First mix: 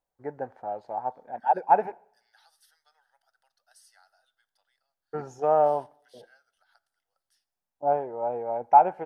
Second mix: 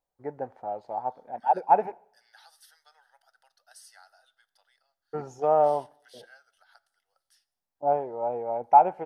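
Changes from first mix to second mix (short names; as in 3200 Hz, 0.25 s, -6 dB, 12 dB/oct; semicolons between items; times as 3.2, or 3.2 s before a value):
first voice: add bell 1600 Hz -6 dB 0.29 oct; second voice +6.5 dB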